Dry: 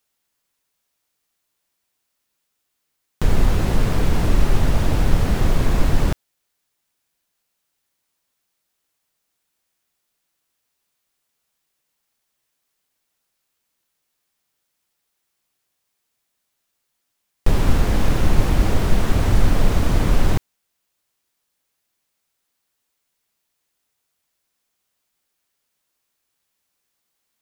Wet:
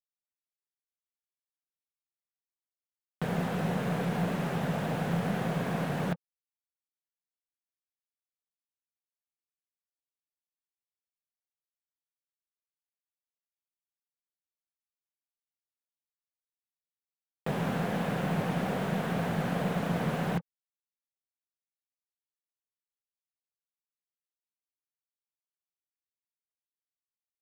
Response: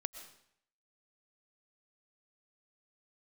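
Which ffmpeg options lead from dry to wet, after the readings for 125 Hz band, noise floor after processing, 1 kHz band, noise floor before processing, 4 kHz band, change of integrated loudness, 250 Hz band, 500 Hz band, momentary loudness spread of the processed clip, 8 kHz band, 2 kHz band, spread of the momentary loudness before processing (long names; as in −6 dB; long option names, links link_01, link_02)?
−11.5 dB, below −85 dBFS, −5.5 dB, −76 dBFS, −11.0 dB, −10.0 dB, −6.0 dB, −6.0 dB, 3 LU, −14.0 dB, −6.0 dB, 4 LU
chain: -af "highpass=frequency=150:width=0.5412,highpass=frequency=150:width=1.3066,equalizer=frequency=170:width_type=q:width=4:gain=10,equalizer=frequency=320:width_type=q:width=4:gain=-7,equalizer=frequency=500:width_type=q:width=4:gain=4,equalizer=frequency=720:width_type=q:width=4:gain=6,equalizer=frequency=1600:width_type=q:width=4:gain=4,lowpass=frequency=3600:width=0.5412,lowpass=frequency=3600:width=1.3066,aeval=exprs='0.355*(cos(1*acos(clip(val(0)/0.355,-1,1)))-cos(1*PI/2))+0.00708*(cos(6*acos(clip(val(0)/0.355,-1,1)))-cos(6*PI/2))':channel_layout=same,acrusher=bits=5:mix=0:aa=0.5,volume=-8.5dB"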